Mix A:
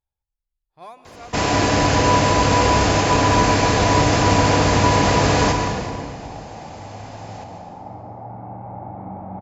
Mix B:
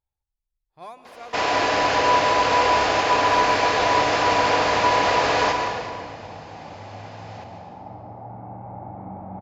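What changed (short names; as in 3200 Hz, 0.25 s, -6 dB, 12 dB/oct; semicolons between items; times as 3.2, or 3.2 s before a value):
first sound: add three-band isolator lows -18 dB, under 410 Hz, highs -23 dB, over 5400 Hz; second sound -3.0 dB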